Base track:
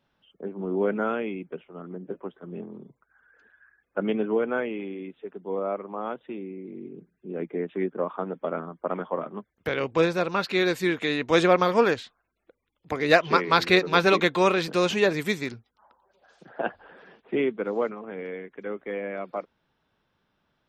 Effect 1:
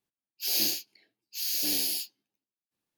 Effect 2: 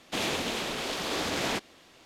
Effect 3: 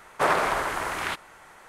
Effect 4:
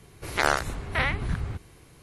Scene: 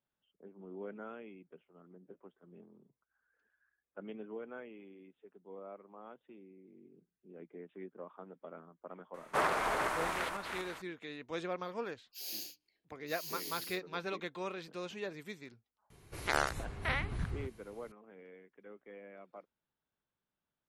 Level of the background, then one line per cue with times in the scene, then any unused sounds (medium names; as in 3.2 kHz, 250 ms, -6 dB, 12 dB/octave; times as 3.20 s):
base track -19.5 dB
9.14 s: add 3 -9 dB + backward echo that repeats 246 ms, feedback 45%, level -4.5 dB
11.73 s: add 1 -15.5 dB + hum notches 50/100/150/200/250/300 Hz
15.90 s: add 4 -8.5 dB
not used: 2